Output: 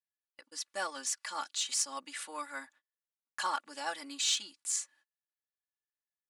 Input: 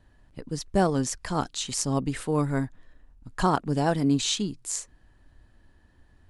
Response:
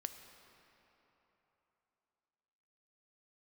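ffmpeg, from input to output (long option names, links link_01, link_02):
-filter_complex "[0:a]highpass=1300,agate=range=-35dB:threshold=-59dB:ratio=16:detection=peak,aecho=1:1:3.5:0.94,asplit=2[link_01][link_02];[link_02]asoftclip=type=tanh:threshold=-25.5dB,volume=-9dB[link_03];[link_01][link_03]amix=inputs=2:normalize=0,volume=-6.5dB"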